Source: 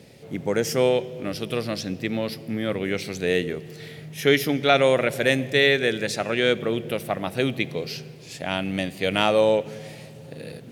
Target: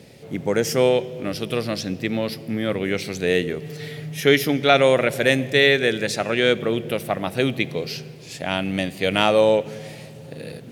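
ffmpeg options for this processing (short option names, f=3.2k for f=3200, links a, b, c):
-filter_complex "[0:a]asettb=1/sr,asplit=3[a][b][c];[a]atrim=end=3.614[d];[b]atrim=start=3.61:end=4.2,asetpts=PTS-STARTPTS,afade=t=in:d=0.004:c=qsin,afade=t=out:st=0.586:d=0.004:c=qsin,aecho=1:1:6.9:0.8,atrim=end_sample=26019[e];[c]atrim=start=4.196[f];[d][e]acrossfade=d=0.004:c1=hsin:c2=qsin[g];[g][f]acrossfade=d=0.004:c1=qsin:c2=hsin,volume=2.5dB"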